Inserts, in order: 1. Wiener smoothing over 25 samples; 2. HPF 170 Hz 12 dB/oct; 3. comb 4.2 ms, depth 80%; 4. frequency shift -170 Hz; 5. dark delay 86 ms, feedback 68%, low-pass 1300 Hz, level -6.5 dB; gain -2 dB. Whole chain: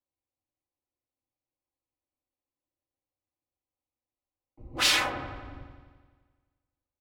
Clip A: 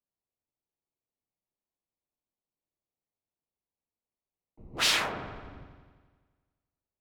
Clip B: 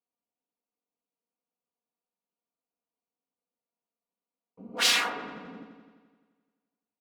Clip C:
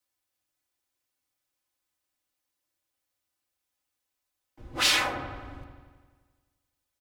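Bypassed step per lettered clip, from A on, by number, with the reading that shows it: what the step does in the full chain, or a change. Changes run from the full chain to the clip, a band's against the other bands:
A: 3, loudness change -2.0 LU; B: 4, 125 Hz band -10.0 dB; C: 1, momentary loudness spread change -1 LU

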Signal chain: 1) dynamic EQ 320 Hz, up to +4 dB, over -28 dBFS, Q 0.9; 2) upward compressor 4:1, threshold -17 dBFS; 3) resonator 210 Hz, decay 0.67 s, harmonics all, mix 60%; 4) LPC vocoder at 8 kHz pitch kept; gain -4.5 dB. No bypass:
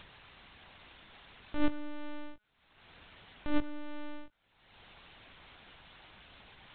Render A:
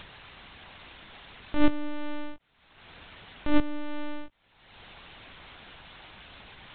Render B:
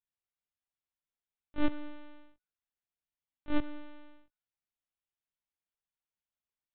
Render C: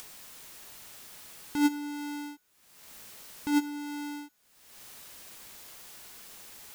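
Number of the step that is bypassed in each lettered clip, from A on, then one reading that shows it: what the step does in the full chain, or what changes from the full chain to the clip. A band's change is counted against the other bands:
3, loudness change +7.5 LU; 2, momentary loudness spread change +1 LU; 4, 2 kHz band -1.5 dB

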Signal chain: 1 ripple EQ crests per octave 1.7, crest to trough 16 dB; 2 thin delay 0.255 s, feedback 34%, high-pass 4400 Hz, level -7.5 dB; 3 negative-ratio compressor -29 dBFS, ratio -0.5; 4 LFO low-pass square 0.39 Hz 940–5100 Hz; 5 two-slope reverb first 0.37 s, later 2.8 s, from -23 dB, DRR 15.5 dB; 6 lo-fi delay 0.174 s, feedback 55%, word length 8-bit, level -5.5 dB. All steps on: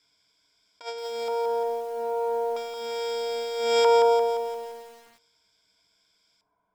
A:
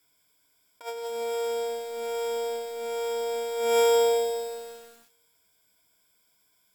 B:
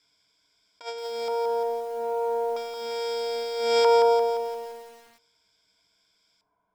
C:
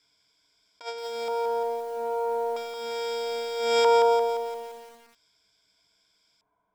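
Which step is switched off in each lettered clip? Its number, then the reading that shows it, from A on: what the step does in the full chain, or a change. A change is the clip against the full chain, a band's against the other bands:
4, 8 kHz band +7.5 dB; 2, 8 kHz band -2.0 dB; 5, 500 Hz band -1.5 dB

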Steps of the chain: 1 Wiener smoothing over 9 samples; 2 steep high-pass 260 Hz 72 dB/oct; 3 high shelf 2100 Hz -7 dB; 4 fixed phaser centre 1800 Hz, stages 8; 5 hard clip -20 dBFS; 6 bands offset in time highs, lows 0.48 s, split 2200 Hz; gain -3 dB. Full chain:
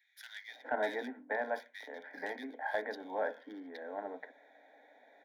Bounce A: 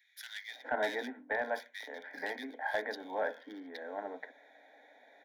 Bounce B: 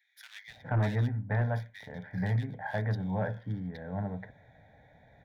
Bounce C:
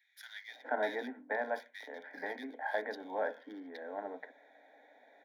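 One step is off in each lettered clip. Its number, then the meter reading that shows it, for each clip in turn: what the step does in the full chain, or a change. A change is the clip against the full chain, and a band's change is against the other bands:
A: 3, 4 kHz band +4.5 dB; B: 2, 250 Hz band +11.0 dB; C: 5, distortion -28 dB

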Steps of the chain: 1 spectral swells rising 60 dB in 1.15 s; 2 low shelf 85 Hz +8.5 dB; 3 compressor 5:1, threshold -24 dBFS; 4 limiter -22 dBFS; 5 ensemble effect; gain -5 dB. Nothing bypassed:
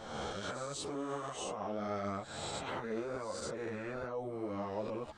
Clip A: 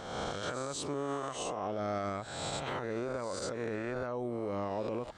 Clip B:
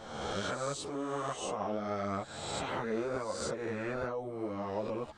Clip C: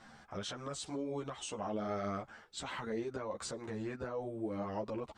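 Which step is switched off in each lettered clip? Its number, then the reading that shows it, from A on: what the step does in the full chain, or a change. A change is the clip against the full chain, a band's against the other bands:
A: 5, crest factor change -3.5 dB; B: 4, mean gain reduction 3.0 dB; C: 1, 250 Hz band +2.0 dB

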